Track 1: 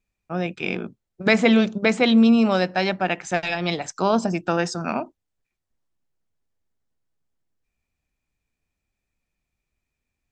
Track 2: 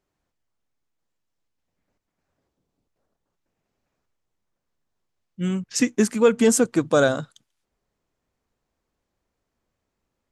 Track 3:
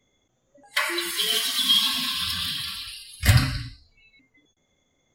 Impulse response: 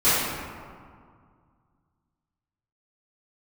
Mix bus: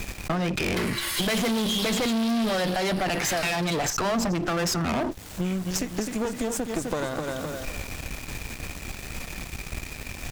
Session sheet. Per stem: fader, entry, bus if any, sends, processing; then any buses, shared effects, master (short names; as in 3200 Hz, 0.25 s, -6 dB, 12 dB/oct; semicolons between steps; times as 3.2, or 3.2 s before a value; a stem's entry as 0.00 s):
-3.5 dB, 0.00 s, no send, no echo send, hard clip -12.5 dBFS, distortion -16 dB; fast leveller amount 70%
-3.5 dB, 0.00 s, no send, echo send -7 dB, compressor, threshold -24 dBFS, peak gain reduction 12 dB
-6.0 dB, 0.00 s, no send, echo send -14 dB, HPF 470 Hz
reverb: off
echo: feedback echo 0.256 s, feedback 35%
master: sample leveller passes 3; one-sided clip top -23.5 dBFS; compressor, threshold -24 dBFS, peak gain reduction 9.5 dB